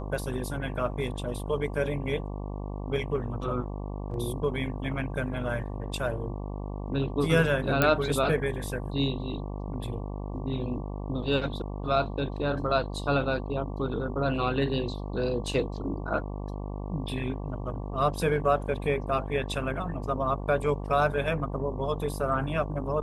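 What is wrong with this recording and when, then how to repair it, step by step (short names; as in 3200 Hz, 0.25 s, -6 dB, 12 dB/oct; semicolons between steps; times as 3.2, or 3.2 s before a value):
buzz 50 Hz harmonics 23 -35 dBFS
7.82 pop -8 dBFS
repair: de-click; de-hum 50 Hz, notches 23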